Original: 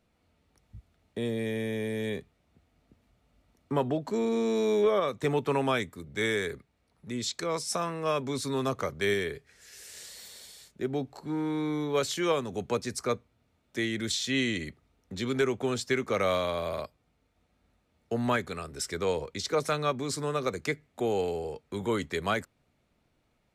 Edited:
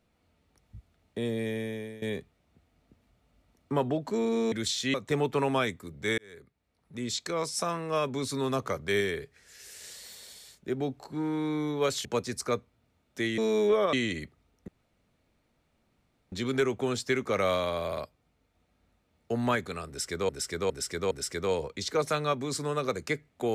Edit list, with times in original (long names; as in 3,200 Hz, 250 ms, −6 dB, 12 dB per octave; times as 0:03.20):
0:01.32–0:02.02: fade out equal-power, to −17.5 dB
0:04.52–0:05.07: swap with 0:13.96–0:14.38
0:06.31–0:07.22: fade in
0:12.18–0:12.63: remove
0:15.13: splice in room tone 1.64 s
0:18.69–0:19.10: repeat, 4 plays